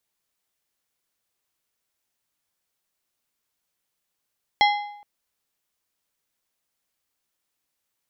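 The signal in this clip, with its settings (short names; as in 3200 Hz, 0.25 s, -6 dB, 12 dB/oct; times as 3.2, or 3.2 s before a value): metal hit plate, length 0.42 s, lowest mode 825 Hz, decay 0.76 s, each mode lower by 4 dB, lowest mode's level -13.5 dB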